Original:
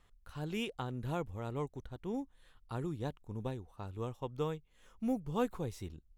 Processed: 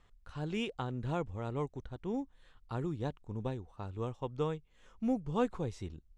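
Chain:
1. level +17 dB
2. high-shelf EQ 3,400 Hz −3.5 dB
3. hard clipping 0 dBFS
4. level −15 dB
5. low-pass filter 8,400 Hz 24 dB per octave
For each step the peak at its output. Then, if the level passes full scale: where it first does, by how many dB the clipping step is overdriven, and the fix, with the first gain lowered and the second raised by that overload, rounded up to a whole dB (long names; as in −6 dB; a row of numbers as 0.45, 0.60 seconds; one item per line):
−2.5, −2.5, −2.5, −17.5, −17.5 dBFS
no step passes full scale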